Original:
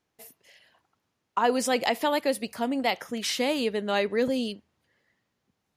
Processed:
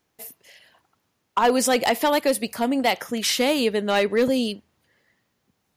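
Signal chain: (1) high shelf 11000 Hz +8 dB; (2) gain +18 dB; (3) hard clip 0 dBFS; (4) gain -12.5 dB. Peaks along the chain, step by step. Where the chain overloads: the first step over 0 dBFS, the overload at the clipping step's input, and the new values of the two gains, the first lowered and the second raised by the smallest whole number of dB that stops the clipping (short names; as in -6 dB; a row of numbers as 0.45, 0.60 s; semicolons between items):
-10.5, +7.5, 0.0, -12.5 dBFS; step 2, 7.5 dB; step 2 +10 dB, step 4 -4.5 dB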